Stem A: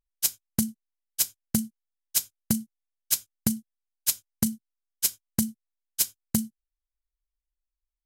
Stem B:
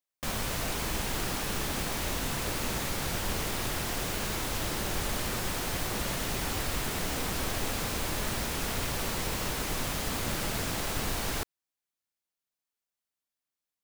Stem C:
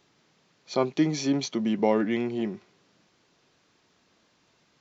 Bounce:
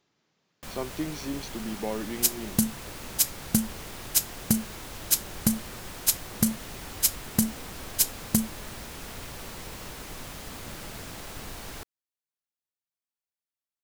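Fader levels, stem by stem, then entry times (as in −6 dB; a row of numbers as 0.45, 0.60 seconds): +1.5, −8.0, −9.0 decibels; 2.00, 0.40, 0.00 seconds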